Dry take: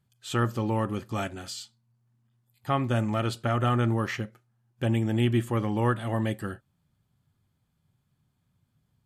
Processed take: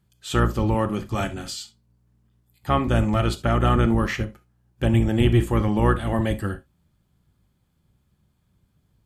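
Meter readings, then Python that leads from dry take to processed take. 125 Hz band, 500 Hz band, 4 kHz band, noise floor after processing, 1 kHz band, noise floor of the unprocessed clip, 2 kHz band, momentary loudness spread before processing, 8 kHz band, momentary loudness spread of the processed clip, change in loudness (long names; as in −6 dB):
+5.5 dB, +5.5 dB, +5.0 dB, −68 dBFS, +5.0 dB, −75 dBFS, +5.0 dB, 13 LU, +4.5 dB, 13 LU, +5.5 dB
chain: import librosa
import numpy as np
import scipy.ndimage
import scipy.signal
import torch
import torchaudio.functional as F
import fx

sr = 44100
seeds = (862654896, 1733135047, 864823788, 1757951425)

y = fx.octave_divider(x, sr, octaves=1, level_db=-2.0)
y = fx.rev_gated(y, sr, seeds[0], gate_ms=90, shape='flat', drr_db=11.5)
y = y * 10.0 ** (4.5 / 20.0)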